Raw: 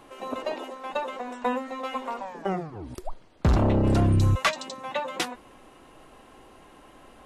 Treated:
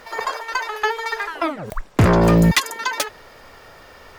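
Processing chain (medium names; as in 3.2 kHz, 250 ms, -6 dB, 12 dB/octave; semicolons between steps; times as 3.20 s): speed mistake 45 rpm record played at 78 rpm; trim +7 dB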